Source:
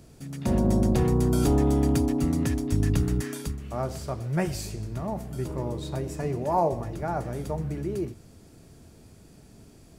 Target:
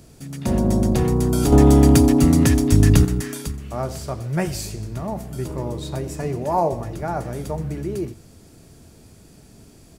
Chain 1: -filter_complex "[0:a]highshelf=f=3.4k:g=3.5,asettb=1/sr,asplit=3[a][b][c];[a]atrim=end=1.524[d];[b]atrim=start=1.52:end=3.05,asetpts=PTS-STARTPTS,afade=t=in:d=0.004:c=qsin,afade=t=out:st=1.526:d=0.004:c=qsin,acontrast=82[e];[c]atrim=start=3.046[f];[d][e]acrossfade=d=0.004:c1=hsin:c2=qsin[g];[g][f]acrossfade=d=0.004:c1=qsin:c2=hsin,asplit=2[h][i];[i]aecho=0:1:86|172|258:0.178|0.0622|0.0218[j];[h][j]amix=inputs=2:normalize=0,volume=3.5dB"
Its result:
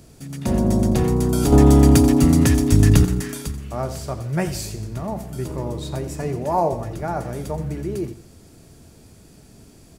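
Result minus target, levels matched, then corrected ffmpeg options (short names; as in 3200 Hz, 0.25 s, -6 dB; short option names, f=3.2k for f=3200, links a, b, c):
echo-to-direct +9.5 dB
-filter_complex "[0:a]highshelf=f=3.4k:g=3.5,asettb=1/sr,asplit=3[a][b][c];[a]atrim=end=1.524[d];[b]atrim=start=1.52:end=3.05,asetpts=PTS-STARTPTS,afade=t=in:d=0.004:c=qsin,afade=t=out:st=1.526:d=0.004:c=qsin,acontrast=82[e];[c]atrim=start=3.046[f];[d][e]acrossfade=d=0.004:c1=hsin:c2=qsin[g];[g][f]acrossfade=d=0.004:c1=qsin:c2=hsin,asplit=2[h][i];[i]aecho=0:1:86|172:0.0596|0.0208[j];[h][j]amix=inputs=2:normalize=0,volume=3.5dB"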